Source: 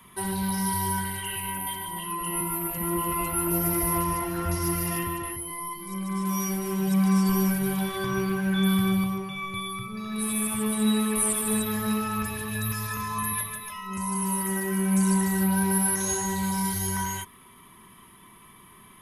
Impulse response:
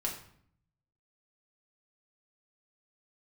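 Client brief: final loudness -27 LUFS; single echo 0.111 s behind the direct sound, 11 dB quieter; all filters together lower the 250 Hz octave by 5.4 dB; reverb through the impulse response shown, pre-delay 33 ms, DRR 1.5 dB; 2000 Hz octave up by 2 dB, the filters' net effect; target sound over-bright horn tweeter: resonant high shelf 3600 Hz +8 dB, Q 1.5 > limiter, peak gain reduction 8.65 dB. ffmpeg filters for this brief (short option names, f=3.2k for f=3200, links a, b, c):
-filter_complex "[0:a]equalizer=f=250:t=o:g=-8.5,equalizer=f=2k:t=o:g=4.5,aecho=1:1:111:0.282,asplit=2[a][b];[1:a]atrim=start_sample=2205,adelay=33[c];[b][c]afir=irnorm=-1:irlink=0,volume=-4.5dB[d];[a][d]amix=inputs=2:normalize=0,highshelf=f=3.6k:t=q:w=1.5:g=8,volume=-6dB,alimiter=limit=-18dB:level=0:latency=1"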